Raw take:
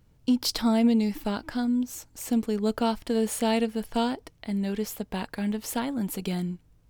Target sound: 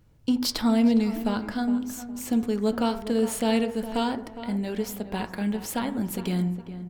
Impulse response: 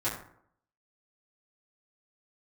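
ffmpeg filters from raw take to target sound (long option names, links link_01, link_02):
-filter_complex "[0:a]asplit=2[link_01][link_02];[link_02]adelay=411,lowpass=frequency=1700:poles=1,volume=-11.5dB,asplit=2[link_03][link_04];[link_04]adelay=411,lowpass=frequency=1700:poles=1,volume=0.31,asplit=2[link_05][link_06];[link_06]adelay=411,lowpass=frequency=1700:poles=1,volume=0.31[link_07];[link_01][link_03][link_05][link_07]amix=inputs=4:normalize=0,asplit=2[link_08][link_09];[1:a]atrim=start_sample=2205,lowpass=3600[link_10];[link_09][link_10]afir=irnorm=-1:irlink=0,volume=-13.5dB[link_11];[link_08][link_11]amix=inputs=2:normalize=0"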